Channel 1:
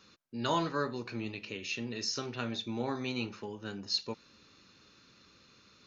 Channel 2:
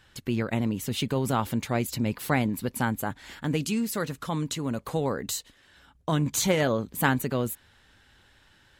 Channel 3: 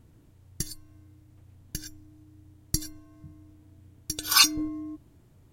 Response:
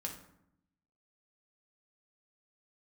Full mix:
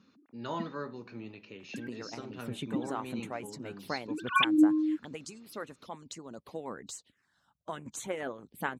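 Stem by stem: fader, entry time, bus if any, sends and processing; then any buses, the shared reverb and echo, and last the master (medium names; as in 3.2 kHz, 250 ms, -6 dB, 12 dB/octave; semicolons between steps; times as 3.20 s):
-5.0 dB, 0.00 s, no send, treble shelf 2.6 kHz -10 dB
-7.5 dB, 1.60 s, no send, low-pass 9.1 kHz 12 dB/octave; harmonic-percussive split harmonic -17 dB; touch-sensitive phaser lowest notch 340 Hz, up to 4.9 kHz, full sweep at -29.5 dBFS
-1.0 dB, 0.00 s, no send, formants replaced by sine waves; spectral gate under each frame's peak -30 dB strong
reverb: none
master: high-pass 100 Hz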